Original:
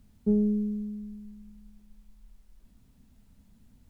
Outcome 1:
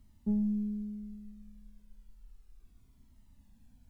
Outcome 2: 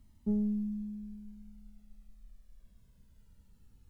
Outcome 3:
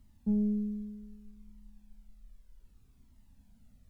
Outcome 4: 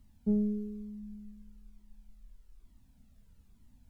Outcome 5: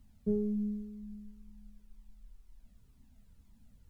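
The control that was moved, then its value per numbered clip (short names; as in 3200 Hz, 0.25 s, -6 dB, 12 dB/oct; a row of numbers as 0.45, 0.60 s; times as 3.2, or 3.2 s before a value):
cascading flanger, rate: 0.32, 0.2, 0.64, 1.1, 2 Hz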